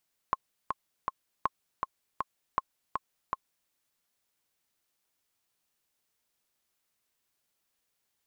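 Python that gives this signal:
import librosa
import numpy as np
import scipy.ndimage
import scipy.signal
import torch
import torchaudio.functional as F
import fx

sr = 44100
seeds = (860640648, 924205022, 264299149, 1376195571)

y = fx.click_track(sr, bpm=160, beats=3, bars=3, hz=1070.0, accent_db=4.0, level_db=-13.0)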